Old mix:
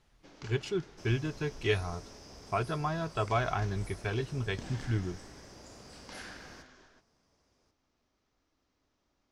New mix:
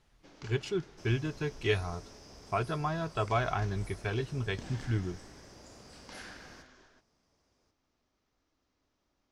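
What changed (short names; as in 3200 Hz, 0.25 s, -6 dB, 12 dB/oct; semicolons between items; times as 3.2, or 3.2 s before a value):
first sound: send off; second sound: send off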